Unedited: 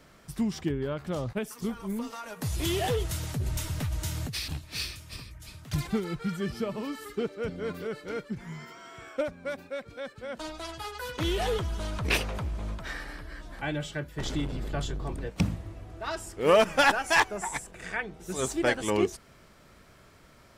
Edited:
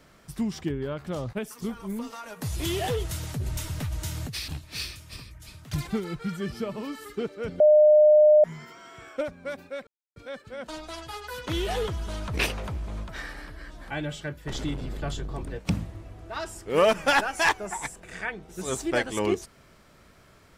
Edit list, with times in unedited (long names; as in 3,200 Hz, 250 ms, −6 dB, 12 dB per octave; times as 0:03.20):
0:07.60–0:08.44: beep over 606 Hz −12.5 dBFS
0:09.87: splice in silence 0.29 s